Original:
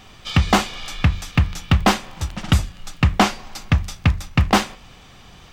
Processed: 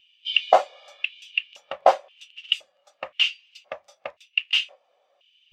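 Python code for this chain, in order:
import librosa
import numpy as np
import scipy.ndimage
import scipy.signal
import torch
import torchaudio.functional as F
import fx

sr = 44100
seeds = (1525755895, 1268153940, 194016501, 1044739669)

y = fx.filter_lfo_highpass(x, sr, shape='square', hz=0.96, low_hz=570.0, high_hz=2800.0, q=5.5)
y = fx.dynamic_eq(y, sr, hz=160.0, q=0.88, threshold_db=-36.0, ratio=4.0, max_db=-4)
y = fx.spectral_expand(y, sr, expansion=1.5)
y = y * librosa.db_to_amplitude(-5.5)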